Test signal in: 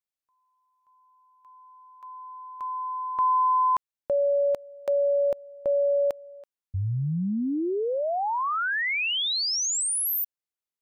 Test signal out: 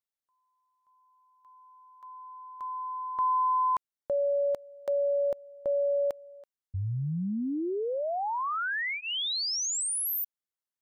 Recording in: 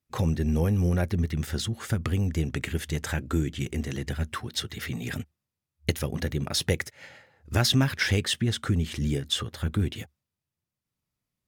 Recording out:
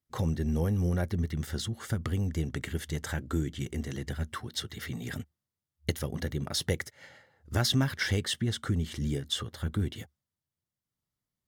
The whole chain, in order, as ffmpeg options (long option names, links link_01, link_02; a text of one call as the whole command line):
ffmpeg -i in.wav -af "bandreject=frequency=2500:width=5.5,volume=-4dB" out.wav